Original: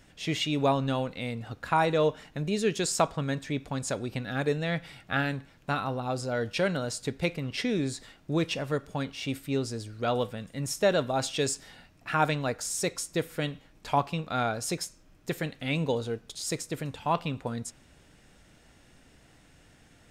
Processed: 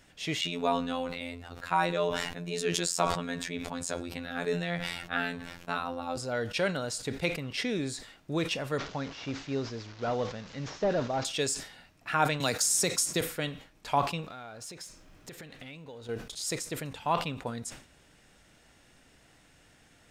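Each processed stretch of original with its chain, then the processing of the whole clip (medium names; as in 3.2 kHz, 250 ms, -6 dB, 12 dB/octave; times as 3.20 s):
0.41–6.17 s: robot voice 86.4 Hz + decay stretcher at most 43 dB/s
8.78–11.25 s: one-bit delta coder 32 kbps, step -40 dBFS + dynamic bell 3.1 kHz, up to -5 dB, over -48 dBFS, Q 0.79
12.40–13.21 s: high-pass 120 Hz + tone controls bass +5 dB, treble +7 dB + three bands compressed up and down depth 70%
14.27–16.09 s: companding laws mixed up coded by mu + treble shelf 9.9 kHz -8 dB + compression 12:1, threshold -39 dBFS
whole clip: bass shelf 410 Hz -5.5 dB; decay stretcher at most 120 dB/s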